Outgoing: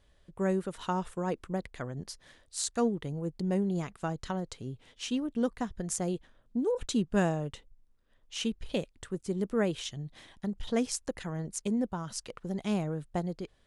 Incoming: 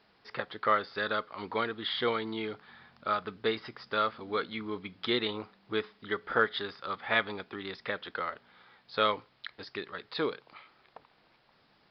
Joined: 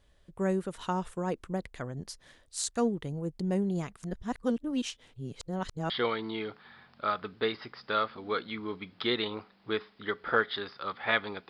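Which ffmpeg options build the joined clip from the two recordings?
ffmpeg -i cue0.wav -i cue1.wav -filter_complex "[0:a]apad=whole_dur=11.49,atrim=end=11.49,asplit=2[link_01][link_02];[link_01]atrim=end=4.032[link_03];[link_02]atrim=start=4.028:end=5.902,asetpts=PTS-STARTPTS,areverse[link_04];[1:a]atrim=start=1.928:end=7.52[link_05];[link_03][link_04]acrossfade=duration=0.004:curve1=hsin:curve2=hsin[link_06];[link_06][link_05]acrossfade=duration=0.004:curve1=hsin:curve2=hsin" out.wav

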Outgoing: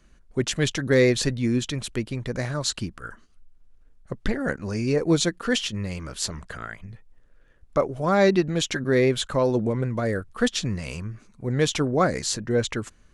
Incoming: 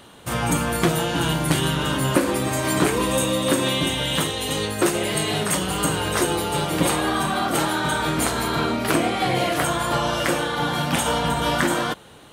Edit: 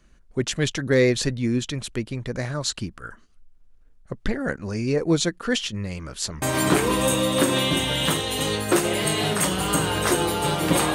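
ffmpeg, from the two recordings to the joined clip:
ffmpeg -i cue0.wav -i cue1.wav -filter_complex "[0:a]apad=whole_dur=10.94,atrim=end=10.94,atrim=end=6.422[link_01];[1:a]atrim=start=2.518:end=7.04[link_02];[link_01][link_02]acrossfade=duration=0.004:curve1=hsin:curve2=hsin" out.wav

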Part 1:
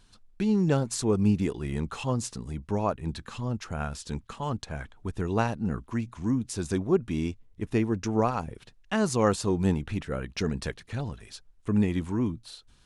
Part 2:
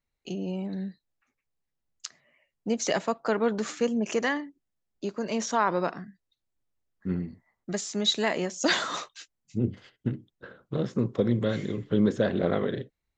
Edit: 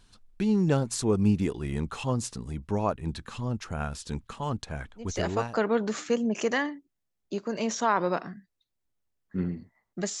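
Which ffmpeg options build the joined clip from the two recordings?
ffmpeg -i cue0.wav -i cue1.wav -filter_complex "[0:a]apad=whole_dur=10.2,atrim=end=10.2,atrim=end=5.64,asetpts=PTS-STARTPTS[link_01];[1:a]atrim=start=2.65:end=7.91,asetpts=PTS-STARTPTS[link_02];[link_01][link_02]acrossfade=duration=0.7:curve1=qsin:curve2=qsin" out.wav

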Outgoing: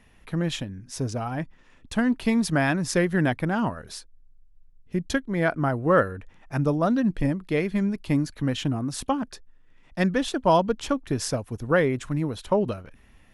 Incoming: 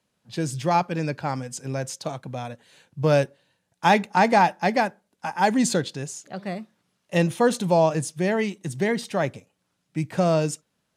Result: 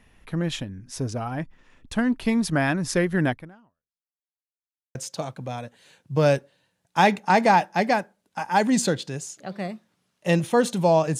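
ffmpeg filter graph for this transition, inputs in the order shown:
ffmpeg -i cue0.wav -i cue1.wav -filter_complex "[0:a]apad=whole_dur=11.19,atrim=end=11.19,asplit=2[link_01][link_02];[link_01]atrim=end=4.28,asetpts=PTS-STARTPTS,afade=type=out:start_time=3.3:duration=0.98:curve=exp[link_03];[link_02]atrim=start=4.28:end=4.95,asetpts=PTS-STARTPTS,volume=0[link_04];[1:a]atrim=start=1.82:end=8.06,asetpts=PTS-STARTPTS,afade=type=in:duration=0.004:curve=hsin[link_05];[link_03][link_04][link_05]concat=n=3:v=0:a=1" out.wav

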